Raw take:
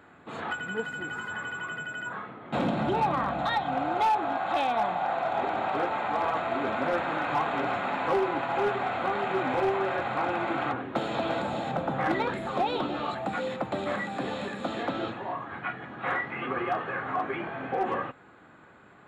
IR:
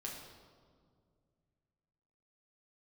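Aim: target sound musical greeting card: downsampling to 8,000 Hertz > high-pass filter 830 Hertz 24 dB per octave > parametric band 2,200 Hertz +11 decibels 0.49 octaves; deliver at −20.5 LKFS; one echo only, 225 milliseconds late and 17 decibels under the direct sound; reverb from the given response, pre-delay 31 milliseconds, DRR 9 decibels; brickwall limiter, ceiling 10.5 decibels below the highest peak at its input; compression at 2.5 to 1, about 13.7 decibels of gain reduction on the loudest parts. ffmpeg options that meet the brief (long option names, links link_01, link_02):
-filter_complex "[0:a]acompressor=threshold=-44dB:ratio=2.5,alimiter=level_in=14dB:limit=-24dB:level=0:latency=1,volume=-14dB,aecho=1:1:225:0.141,asplit=2[link_01][link_02];[1:a]atrim=start_sample=2205,adelay=31[link_03];[link_02][link_03]afir=irnorm=-1:irlink=0,volume=-7.5dB[link_04];[link_01][link_04]amix=inputs=2:normalize=0,aresample=8000,aresample=44100,highpass=frequency=830:width=0.5412,highpass=frequency=830:width=1.3066,equalizer=frequency=2200:width_type=o:width=0.49:gain=11,volume=24.5dB"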